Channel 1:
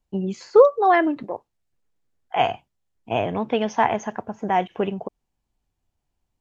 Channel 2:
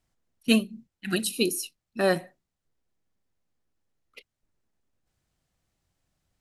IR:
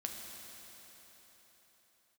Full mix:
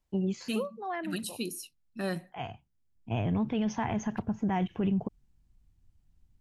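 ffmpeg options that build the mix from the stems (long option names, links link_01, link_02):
-filter_complex "[0:a]volume=-4dB[link_01];[1:a]highpass=160,volume=-9.5dB,asplit=2[link_02][link_03];[link_03]apad=whole_len=282552[link_04];[link_01][link_04]sidechaincompress=threshold=-41dB:ratio=10:attack=7:release=1320[link_05];[link_05][link_02]amix=inputs=2:normalize=0,asubboost=boost=8:cutoff=200,alimiter=limit=-21.5dB:level=0:latency=1:release=45"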